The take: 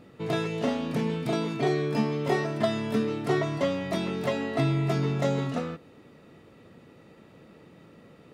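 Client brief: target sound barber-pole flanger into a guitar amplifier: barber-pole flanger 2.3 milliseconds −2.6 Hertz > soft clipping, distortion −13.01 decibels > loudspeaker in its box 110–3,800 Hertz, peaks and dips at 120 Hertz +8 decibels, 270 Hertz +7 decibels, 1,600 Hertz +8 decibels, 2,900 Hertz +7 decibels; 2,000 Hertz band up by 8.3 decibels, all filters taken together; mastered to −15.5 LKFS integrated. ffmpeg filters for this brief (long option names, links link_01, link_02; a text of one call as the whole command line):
ffmpeg -i in.wav -filter_complex "[0:a]equalizer=frequency=2000:width_type=o:gain=4.5,asplit=2[link_01][link_02];[link_02]adelay=2.3,afreqshift=-2.6[link_03];[link_01][link_03]amix=inputs=2:normalize=1,asoftclip=threshold=-25.5dB,highpass=110,equalizer=frequency=120:width_type=q:width=4:gain=8,equalizer=frequency=270:width_type=q:width=4:gain=7,equalizer=frequency=1600:width_type=q:width=4:gain=8,equalizer=frequency=2900:width_type=q:width=4:gain=7,lowpass=frequency=3800:width=0.5412,lowpass=frequency=3800:width=1.3066,volume=15dB" out.wav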